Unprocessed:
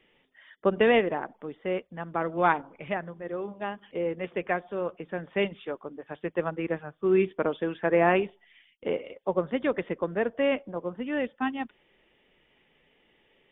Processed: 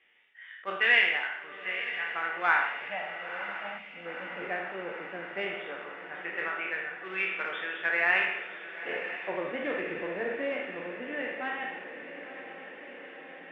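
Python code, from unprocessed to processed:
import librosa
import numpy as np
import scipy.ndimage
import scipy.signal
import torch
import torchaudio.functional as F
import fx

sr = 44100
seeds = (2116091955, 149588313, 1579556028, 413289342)

p1 = fx.spec_trails(x, sr, decay_s=0.74)
p2 = fx.fixed_phaser(p1, sr, hz=390.0, stages=6, at=(2.67, 4.42))
p3 = np.clip(p2, -10.0 ** (-20.0 / 20.0), 10.0 ** (-20.0 / 20.0))
p4 = p2 + (p3 * 10.0 ** (-12.0 / 20.0))
p5 = fx.filter_lfo_bandpass(p4, sr, shape='sine', hz=0.17, low_hz=400.0, high_hz=1800.0, q=0.84)
p6 = p5 + fx.echo_diffused(p5, sr, ms=968, feedback_pct=71, wet_db=-11.5, dry=0)
p7 = fx.rev_double_slope(p6, sr, seeds[0], early_s=0.74, late_s=1.9, knee_db=-18, drr_db=4.0)
p8 = fx.spec_box(p7, sr, start_s=3.78, length_s=0.28, low_hz=310.0, high_hz=2000.0, gain_db=-9)
p9 = fx.graphic_eq_10(p8, sr, hz=(125, 250, 500, 1000, 2000), db=(-11, -10, -11, -10, 4))
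p10 = fx.attack_slew(p9, sr, db_per_s=450.0)
y = p10 * 10.0 ** (2.5 / 20.0)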